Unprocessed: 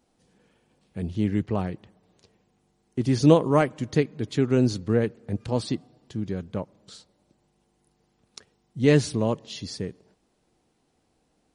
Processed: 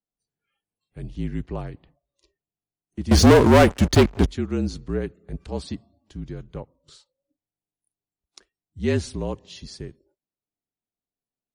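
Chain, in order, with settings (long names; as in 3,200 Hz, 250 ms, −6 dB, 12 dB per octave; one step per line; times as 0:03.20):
0:03.11–0:04.28: leveller curve on the samples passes 5
noise reduction from a noise print of the clip's start 24 dB
frequency shifter −45 Hz
level −4 dB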